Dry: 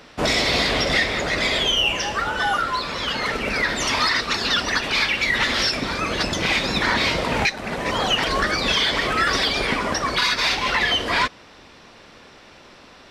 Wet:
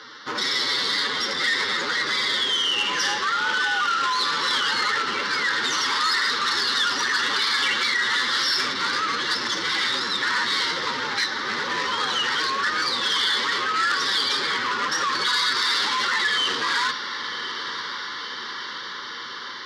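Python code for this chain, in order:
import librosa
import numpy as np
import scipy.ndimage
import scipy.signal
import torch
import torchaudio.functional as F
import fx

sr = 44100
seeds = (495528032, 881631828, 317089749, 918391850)

p1 = fx.octave_divider(x, sr, octaves=1, level_db=-1.0)
p2 = fx.fixed_phaser(p1, sr, hz=2500.0, stages=6)
p3 = fx.stretch_vocoder(p2, sr, factor=1.5)
p4 = fx.over_compress(p3, sr, threshold_db=-29.0, ratio=-0.5)
p5 = p3 + F.gain(torch.from_numpy(p4), 1.0).numpy()
p6 = fx.bandpass_edges(p5, sr, low_hz=490.0, high_hz=6800.0)
p7 = p6 + fx.echo_diffused(p6, sr, ms=1064, feedback_pct=71, wet_db=-11, dry=0)
y = fx.transformer_sat(p7, sr, knee_hz=3200.0)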